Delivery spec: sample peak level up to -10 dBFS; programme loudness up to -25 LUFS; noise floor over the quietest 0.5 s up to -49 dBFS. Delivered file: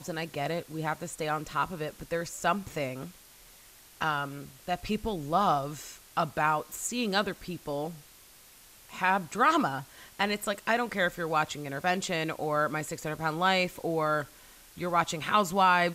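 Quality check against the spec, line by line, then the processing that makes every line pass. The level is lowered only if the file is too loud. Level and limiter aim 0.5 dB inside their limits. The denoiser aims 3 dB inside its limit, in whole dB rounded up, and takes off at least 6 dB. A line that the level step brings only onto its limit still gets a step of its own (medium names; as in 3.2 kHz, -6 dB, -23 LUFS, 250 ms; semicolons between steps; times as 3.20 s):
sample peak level -12.0 dBFS: pass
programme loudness -30.0 LUFS: pass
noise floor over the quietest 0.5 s -55 dBFS: pass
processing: none needed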